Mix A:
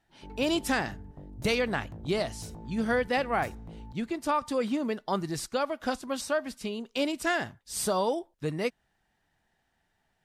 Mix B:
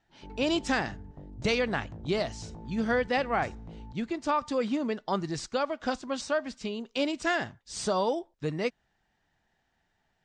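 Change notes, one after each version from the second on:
master: add Butterworth low-pass 7,500 Hz 36 dB per octave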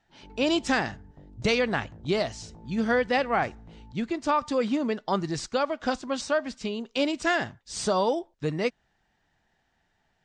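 speech +3.0 dB
background −4.0 dB

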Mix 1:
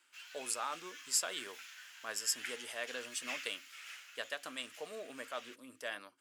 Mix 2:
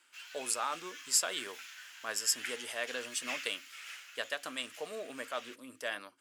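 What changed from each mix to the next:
speech +4.0 dB
reverb: on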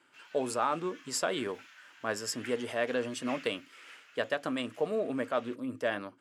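speech +6.0 dB
master: add spectral tilt −4.5 dB per octave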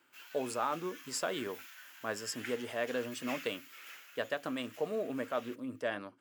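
speech −4.0 dB
background: remove high-frequency loss of the air 86 metres

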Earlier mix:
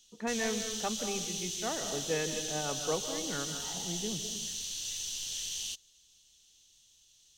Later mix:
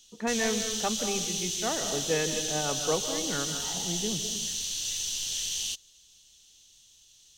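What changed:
speech +4.5 dB
background +5.5 dB

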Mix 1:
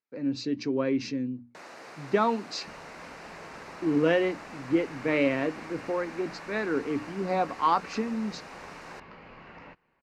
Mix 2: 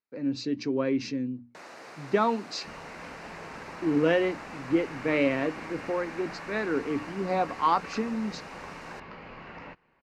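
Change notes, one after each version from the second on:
second sound +4.0 dB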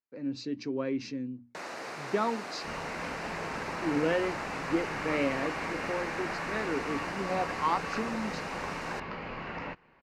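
speech −5.0 dB
first sound +6.0 dB
second sound +5.5 dB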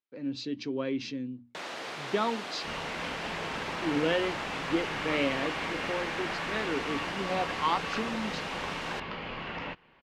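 master: add parametric band 3,300 Hz +12.5 dB 0.47 octaves

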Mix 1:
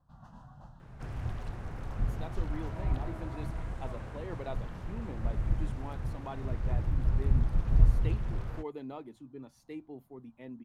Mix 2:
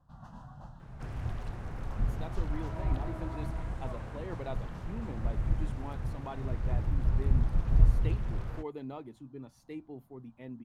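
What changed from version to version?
speech: remove high-pass filter 160 Hz
first sound +3.5 dB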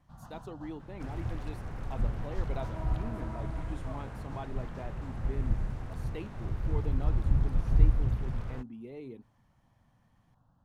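speech: entry −1.90 s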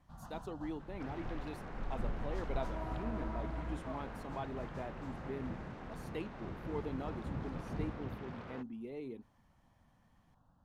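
second sound: add band-pass filter 180–4,300 Hz
master: add parametric band 120 Hz −7 dB 0.47 octaves

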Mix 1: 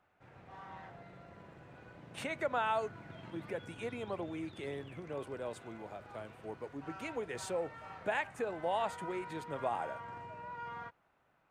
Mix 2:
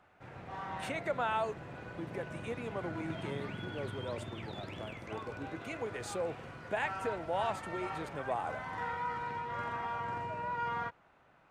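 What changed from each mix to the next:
speech: entry −1.35 s
background +8.5 dB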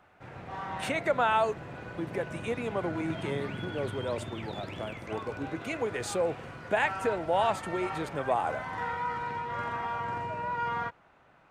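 speech +7.5 dB
background +4.0 dB

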